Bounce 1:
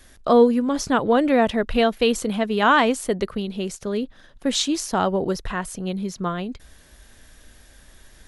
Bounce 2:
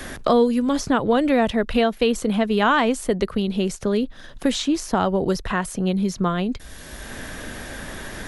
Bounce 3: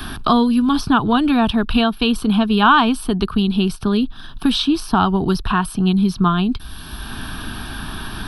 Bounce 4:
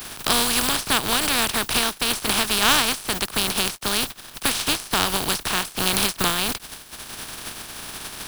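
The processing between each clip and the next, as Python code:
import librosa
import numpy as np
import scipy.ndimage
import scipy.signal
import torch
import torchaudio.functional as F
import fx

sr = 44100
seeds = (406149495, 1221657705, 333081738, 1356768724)

y1 = fx.low_shelf(x, sr, hz=120.0, db=6.5)
y1 = fx.band_squash(y1, sr, depth_pct=70)
y2 = fx.fixed_phaser(y1, sr, hz=2000.0, stages=6)
y2 = y2 * librosa.db_to_amplitude(8.0)
y3 = fx.spec_flatten(y2, sr, power=0.22)
y3 = np.sign(y3) * np.maximum(np.abs(y3) - 10.0 ** (-37.0 / 20.0), 0.0)
y3 = y3 * librosa.db_to_amplitude(-5.0)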